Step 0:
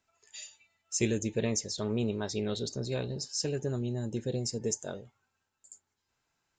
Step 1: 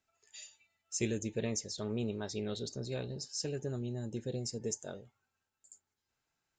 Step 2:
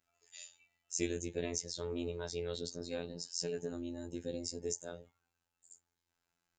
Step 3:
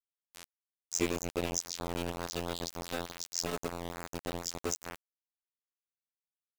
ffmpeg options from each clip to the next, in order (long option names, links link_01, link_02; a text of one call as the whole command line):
ffmpeg -i in.wav -af "bandreject=frequency=1000:width=13,volume=-5dB" out.wav
ffmpeg -i in.wav -af "afftfilt=real='hypot(re,im)*cos(PI*b)':imag='0':win_size=2048:overlap=0.75,volume=2.5dB" out.wav
ffmpeg -i in.wav -af "aeval=exprs='val(0)*gte(abs(val(0)),0.0178)':channel_layout=same,volume=5dB" out.wav